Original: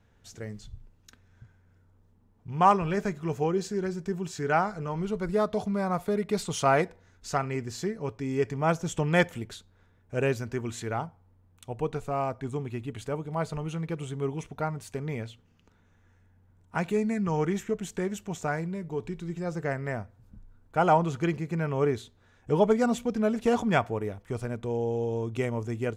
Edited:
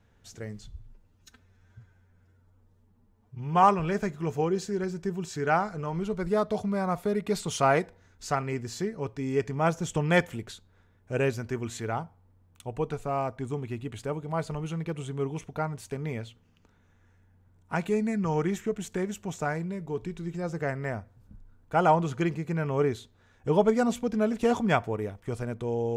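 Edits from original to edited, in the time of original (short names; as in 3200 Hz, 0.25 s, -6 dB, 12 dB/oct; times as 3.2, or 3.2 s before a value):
0.71–2.66 stretch 1.5×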